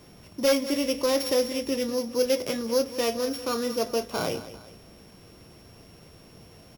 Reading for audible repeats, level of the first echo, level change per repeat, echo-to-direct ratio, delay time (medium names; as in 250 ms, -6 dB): 2, -14.5 dB, -7.0 dB, -13.5 dB, 199 ms